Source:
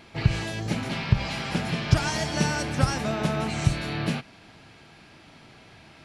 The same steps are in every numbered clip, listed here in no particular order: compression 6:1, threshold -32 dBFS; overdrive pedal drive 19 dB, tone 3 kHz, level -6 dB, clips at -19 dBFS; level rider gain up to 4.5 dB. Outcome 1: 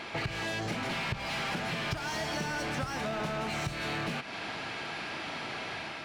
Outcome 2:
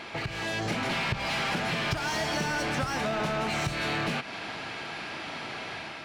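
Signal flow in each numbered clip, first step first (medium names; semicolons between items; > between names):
level rider > overdrive pedal > compression; overdrive pedal > compression > level rider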